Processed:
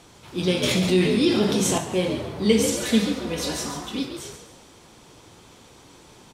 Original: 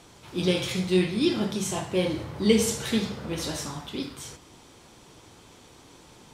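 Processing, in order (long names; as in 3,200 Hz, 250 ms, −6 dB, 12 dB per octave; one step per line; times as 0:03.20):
0:02.72–0:04.05: comb filter 4.1 ms, depth 82%
echo with shifted repeats 138 ms, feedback 40%, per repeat +67 Hz, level −9 dB
0:00.63–0:01.78: envelope flattener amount 50%
level +1.5 dB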